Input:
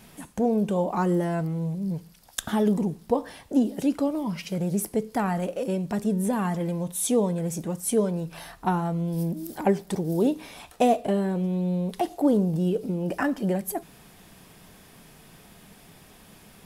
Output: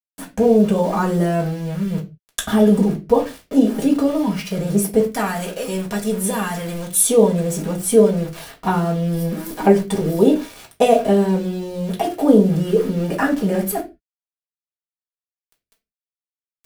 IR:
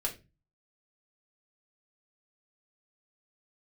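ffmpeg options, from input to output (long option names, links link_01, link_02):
-filter_complex "[0:a]asettb=1/sr,asplit=3[link_01][link_02][link_03];[link_01]atrim=end=5.034[link_04];[link_02]atrim=start=5.03:end=7.03,asetpts=PTS-STARTPTS,afade=type=in:duration=0.004:curve=qsin,afade=type=out:start_time=1.996:duration=0.004:curve=qsin,tiltshelf=frequency=1500:gain=-6.5[link_05];[link_03]atrim=start=7.026[link_06];[link_04][link_05]acrossfade=duration=0.004:curve1=hsin:curve2=qsin[link_07];[link_07][link_06]acrossfade=duration=0.004:curve1=qsin:curve2=hsin,aeval=exprs='val(0)*gte(abs(val(0)),0.0119)':channel_layout=same[link_08];[1:a]atrim=start_sample=2205,afade=type=out:start_time=0.24:duration=0.01,atrim=end_sample=11025[link_09];[link_08][link_09]afir=irnorm=-1:irlink=0,volume=5dB"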